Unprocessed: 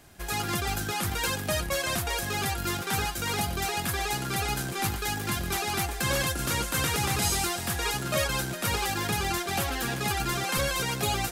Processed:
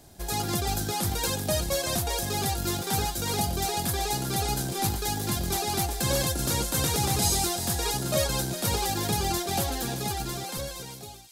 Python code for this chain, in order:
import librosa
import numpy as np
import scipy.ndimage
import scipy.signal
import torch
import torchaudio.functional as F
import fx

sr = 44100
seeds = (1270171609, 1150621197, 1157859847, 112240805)

y = fx.fade_out_tail(x, sr, length_s=1.78)
y = fx.band_shelf(y, sr, hz=1800.0, db=-8.5, octaves=1.7)
y = fx.echo_wet_highpass(y, sr, ms=383, feedback_pct=40, hz=2900.0, wet_db=-10.5)
y = F.gain(torch.from_numpy(y), 2.5).numpy()